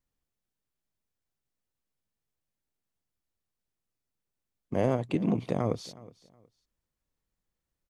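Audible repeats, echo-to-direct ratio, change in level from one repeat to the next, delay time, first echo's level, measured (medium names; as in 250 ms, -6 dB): 2, -20.5 dB, -12.5 dB, 367 ms, -20.5 dB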